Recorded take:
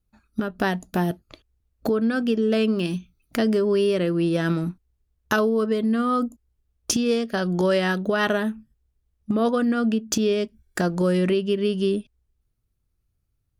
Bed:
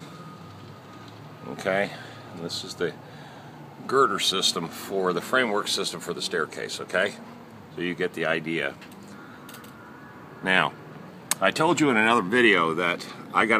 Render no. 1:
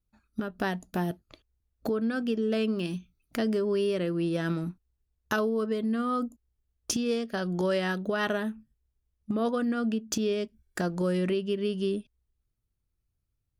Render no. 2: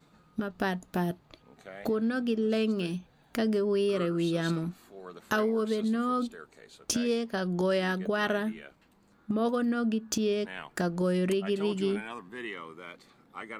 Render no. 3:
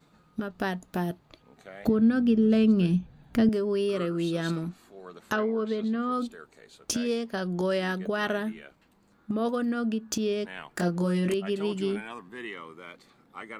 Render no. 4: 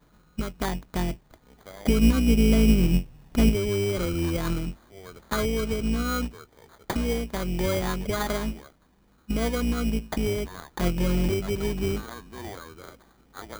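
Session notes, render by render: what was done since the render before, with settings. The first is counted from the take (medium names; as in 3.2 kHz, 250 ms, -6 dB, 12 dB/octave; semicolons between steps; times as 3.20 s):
trim -6.5 dB
add bed -20.5 dB
1.87–3.49 s: tone controls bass +14 dB, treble -4 dB; 4.67–6.12 s: low-pass that closes with the level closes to 2.8 kHz, closed at -23 dBFS; 10.76–11.34 s: doubling 23 ms -4 dB
octave divider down 2 oct, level +1 dB; sample-rate reducer 2.7 kHz, jitter 0%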